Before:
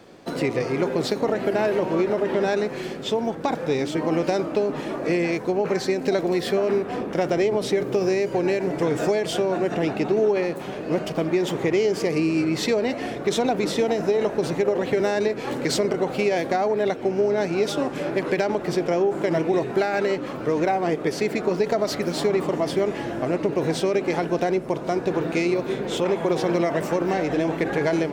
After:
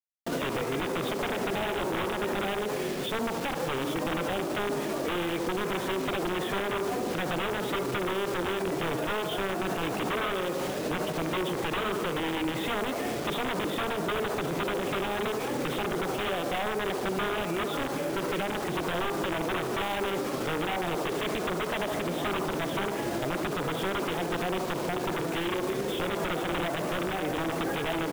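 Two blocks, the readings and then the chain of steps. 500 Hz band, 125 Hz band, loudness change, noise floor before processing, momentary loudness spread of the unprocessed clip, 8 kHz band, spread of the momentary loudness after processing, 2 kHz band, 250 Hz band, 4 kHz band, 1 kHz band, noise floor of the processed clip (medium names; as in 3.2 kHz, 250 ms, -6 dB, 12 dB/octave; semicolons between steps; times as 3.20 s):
-9.0 dB, -6.0 dB, -6.5 dB, -33 dBFS, 4 LU, -3.5 dB, 1 LU, -1.5 dB, -7.5 dB, -1.0 dB, -3.0 dB, -33 dBFS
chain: integer overflow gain 16.5 dB; on a send: feedback echo behind a band-pass 74 ms, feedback 60%, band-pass 600 Hz, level -7 dB; on the sum: resampled via 8 kHz; bit crusher 6-bit; peak limiter -23 dBFS, peak gain reduction 11 dB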